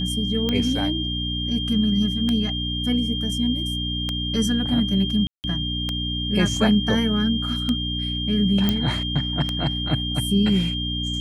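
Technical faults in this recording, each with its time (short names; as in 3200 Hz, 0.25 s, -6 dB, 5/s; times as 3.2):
hum 60 Hz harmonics 5 -28 dBFS
tick 33 1/3 rpm -10 dBFS
tone 3200 Hz -27 dBFS
5.27–5.44 gap 0.169 s
8.69 pop -7 dBFS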